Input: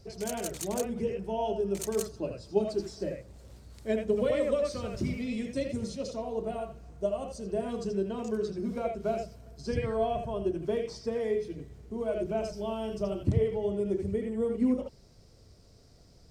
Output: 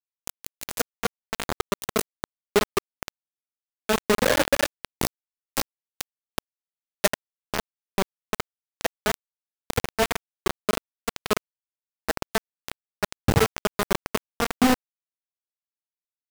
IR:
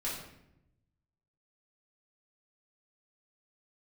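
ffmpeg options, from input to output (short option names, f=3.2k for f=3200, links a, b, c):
-filter_complex "[0:a]acrusher=bits=3:mix=0:aa=0.000001,asettb=1/sr,asplit=3[a][b][c];[a]atrim=end=4.874[d];[b]atrim=start=4.87:end=7.07,asetpts=PTS-STARTPTS,afade=t=in:d=0.004:c=qsin,afade=t=out:st=2.196:d=0.004:c=qsin,highshelf=f=4.7k:g=8[e];[c]atrim=start=7.066[f];[d][e]acrossfade=d=0.004:c1=hsin:c2=qsin[g];[g][f]acrossfade=d=0.004:c1=qsin:c2=hsin,volume=4.5dB"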